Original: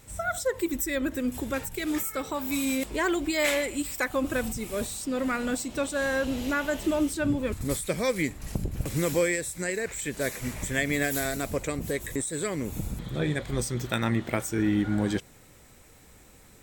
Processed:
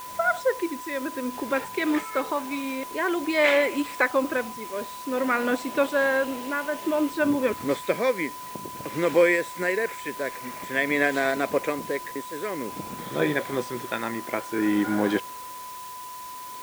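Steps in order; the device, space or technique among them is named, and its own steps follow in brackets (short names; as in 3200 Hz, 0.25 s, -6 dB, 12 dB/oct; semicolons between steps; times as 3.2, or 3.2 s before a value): shortwave radio (BPF 320–2700 Hz; tremolo 0.53 Hz, depth 60%; whine 1000 Hz -45 dBFS; white noise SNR 18 dB); gain +8 dB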